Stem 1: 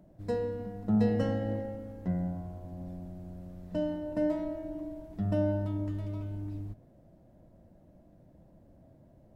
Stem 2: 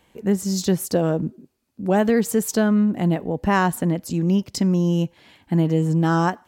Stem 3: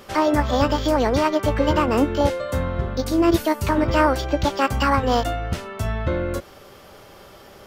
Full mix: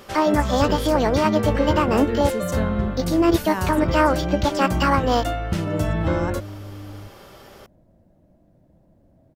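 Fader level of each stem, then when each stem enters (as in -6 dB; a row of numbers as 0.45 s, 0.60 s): +1.0 dB, -9.5 dB, 0.0 dB; 0.35 s, 0.00 s, 0.00 s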